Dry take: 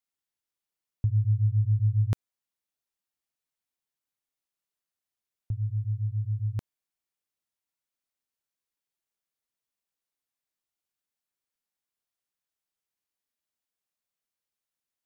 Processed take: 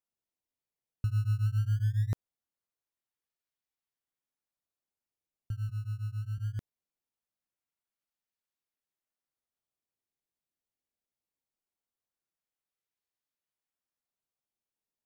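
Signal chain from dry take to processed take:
0:05.69–0:06.38: high-pass filter 83 Hz 12 dB per octave
in parallel at −5.5 dB: sample-and-hold swept by an LFO 18×, swing 160% 0.21 Hz
on the sum: level −8.5 dB

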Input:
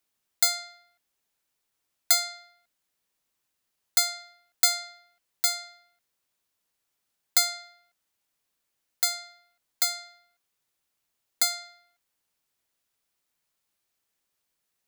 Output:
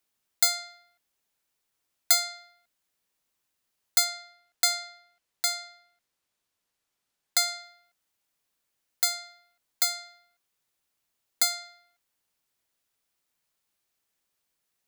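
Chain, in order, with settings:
0:04.04–0:07.48: high-shelf EQ 11,000 Hz −7.5 dB

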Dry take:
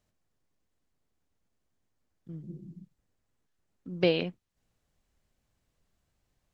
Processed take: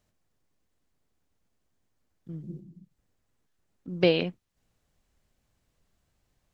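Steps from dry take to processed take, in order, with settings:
0:02.59–0:03.88: downward compressor 3 to 1, threshold −52 dBFS, peak gain reduction 7 dB
level +3 dB

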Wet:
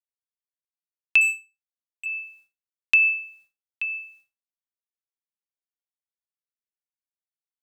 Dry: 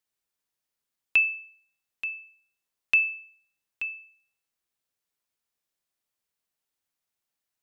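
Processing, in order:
transient designer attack 0 dB, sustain +8 dB
0:01.21–0:02.06: power curve on the samples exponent 2
downward expander −53 dBFS
level +3.5 dB

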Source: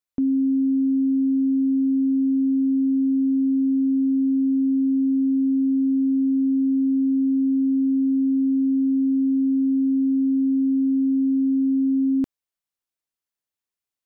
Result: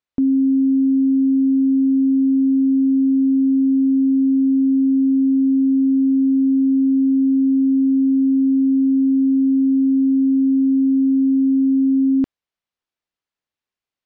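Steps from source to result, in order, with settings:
low-pass filter 4,200 Hz 12 dB per octave
level +4.5 dB

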